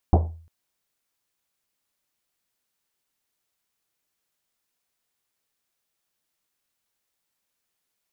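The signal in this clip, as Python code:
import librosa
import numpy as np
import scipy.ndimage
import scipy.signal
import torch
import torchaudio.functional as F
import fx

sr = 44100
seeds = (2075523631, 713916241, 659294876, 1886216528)

y = fx.risset_drum(sr, seeds[0], length_s=0.35, hz=82.0, decay_s=0.51, noise_hz=530.0, noise_width_hz=670.0, noise_pct=25)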